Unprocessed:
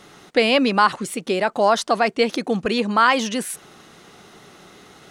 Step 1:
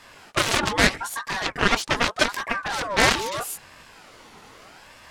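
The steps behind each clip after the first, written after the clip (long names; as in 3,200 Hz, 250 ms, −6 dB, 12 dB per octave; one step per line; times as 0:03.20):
chorus effect 2.8 Hz, delay 16.5 ms, depth 6.6 ms
harmonic generator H 7 −10 dB, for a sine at −6.5 dBFS
ring modulator whose carrier an LFO sweeps 1,000 Hz, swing 40%, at 0.8 Hz
level +3 dB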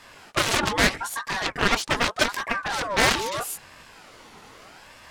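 hard clipping −9 dBFS, distortion −15 dB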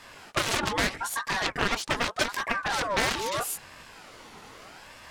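downward compressor 3 to 1, threshold −23 dBFS, peak gain reduction 8 dB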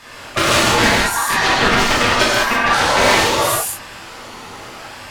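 reverb whose tail is shaped and stops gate 230 ms flat, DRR −7 dB
level +6 dB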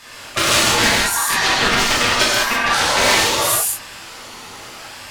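high-shelf EQ 2,500 Hz +8.5 dB
level −4.5 dB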